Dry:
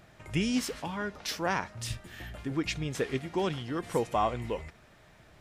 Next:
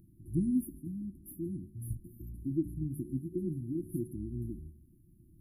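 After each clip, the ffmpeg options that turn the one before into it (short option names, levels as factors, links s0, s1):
-af "afftfilt=real='re*(1-between(b*sr/4096,370,9700))':imag='im*(1-between(b*sr/4096,370,9700))':win_size=4096:overlap=0.75,bandreject=f=73.55:t=h:w=4,bandreject=f=147.1:t=h:w=4,bandreject=f=220.65:t=h:w=4,bandreject=f=294.2:t=h:w=4,bandreject=f=367.75:t=h:w=4,bandreject=f=441.3:t=h:w=4,bandreject=f=514.85:t=h:w=4,bandreject=f=588.4:t=h:w=4,bandreject=f=661.95:t=h:w=4,bandreject=f=735.5:t=h:w=4,bandreject=f=809.05:t=h:w=4,bandreject=f=882.6:t=h:w=4,bandreject=f=956.15:t=h:w=4,bandreject=f=1029.7:t=h:w=4,bandreject=f=1103.25:t=h:w=4,bandreject=f=1176.8:t=h:w=4,bandreject=f=1250.35:t=h:w=4,bandreject=f=1323.9:t=h:w=4,bandreject=f=1397.45:t=h:w=4,bandreject=f=1471:t=h:w=4,bandreject=f=1544.55:t=h:w=4,bandreject=f=1618.1:t=h:w=4,bandreject=f=1691.65:t=h:w=4,bandreject=f=1765.2:t=h:w=4,bandreject=f=1838.75:t=h:w=4,bandreject=f=1912.3:t=h:w=4,bandreject=f=1985.85:t=h:w=4,bandreject=f=2059.4:t=h:w=4,bandreject=f=2132.95:t=h:w=4,bandreject=f=2206.5:t=h:w=4,bandreject=f=2280.05:t=h:w=4,bandreject=f=2353.6:t=h:w=4,bandreject=f=2427.15:t=h:w=4,bandreject=f=2500.7:t=h:w=4,bandreject=f=2574.25:t=h:w=4"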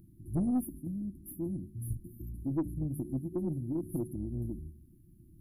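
-af "acontrast=48,aeval=exprs='(tanh(11.2*val(0)+0.15)-tanh(0.15))/11.2':c=same,volume=0.708"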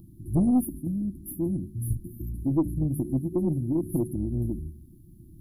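-af "asuperstop=centerf=1900:order=8:qfactor=1,volume=2.51"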